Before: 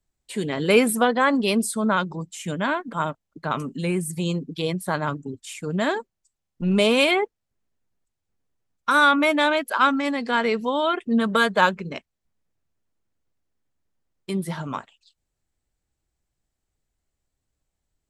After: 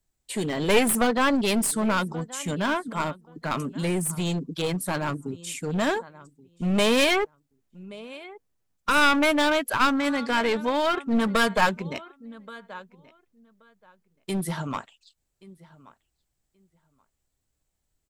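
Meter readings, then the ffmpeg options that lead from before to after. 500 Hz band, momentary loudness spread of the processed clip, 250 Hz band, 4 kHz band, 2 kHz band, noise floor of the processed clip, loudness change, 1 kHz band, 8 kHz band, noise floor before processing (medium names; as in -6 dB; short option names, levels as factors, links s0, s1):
-2.5 dB, 20 LU, -1.5 dB, -0.5 dB, -2.5 dB, -78 dBFS, -2.0 dB, -2.5 dB, +3.0 dB, -81 dBFS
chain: -filter_complex "[0:a]highshelf=f=6900:g=6.5,asplit=2[s0][s1];[s1]adelay=1128,lowpass=f=3300:p=1,volume=0.0841,asplit=2[s2][s3];[s3]adelay=1128,lowpass=f=3300:p=1,volume=0.16[s4];[s0][s2][s4]amix=inputs=3:normalize=0,aeval=exprs='clip(val(0),-1,0.0708)':c=same"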